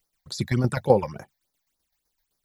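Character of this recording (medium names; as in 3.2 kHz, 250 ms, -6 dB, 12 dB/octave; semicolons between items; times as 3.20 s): a quantiser's noise floor 12-bit, dither triangular; tremolo saw down 7.8 Hz, depth 65%; phasing stages 8, 3.5 Hz, lowest notch 350–3000 Hz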